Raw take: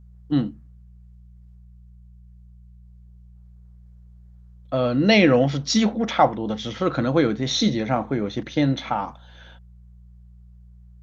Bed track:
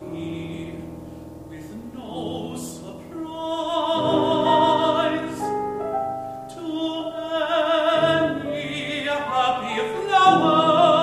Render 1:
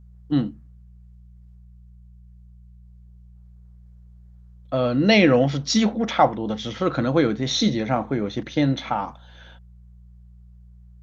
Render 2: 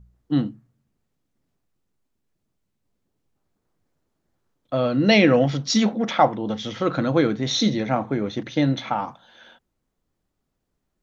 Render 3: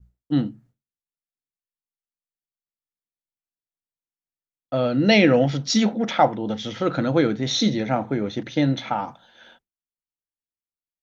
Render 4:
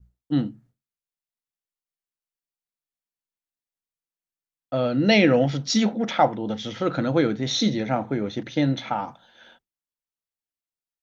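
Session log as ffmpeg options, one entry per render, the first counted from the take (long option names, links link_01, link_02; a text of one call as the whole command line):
ffmpeg -i in.wav -af anull out.wav
ffmpeg -i in.wav -af "bandreject=frequency=60:width_type=h:width=4,bandreject=frequency=120:width_type=h:width=4,bandreject=frequency=180:width_type=h:width=4" out.wav
ffmpeg -i in.wav -af "bandreject=frequency=1100:width=8.9,agate=range=-33dB:threshold=-49dB:ratio=3:detection=peak" out.wav
ffmpeg -i in.wav -af "volume=-1.5dB" out.wav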